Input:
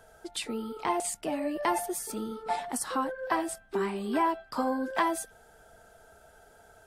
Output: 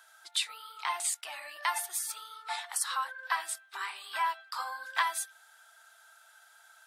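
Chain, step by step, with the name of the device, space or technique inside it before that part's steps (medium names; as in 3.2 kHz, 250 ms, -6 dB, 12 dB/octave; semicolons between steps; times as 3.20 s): headphones lying on a table (high-pass 1.1 kHz 24 dB/octave; peaking EQ 3.8 kHz +6 dB 0.33 oct); trim +2.5 dB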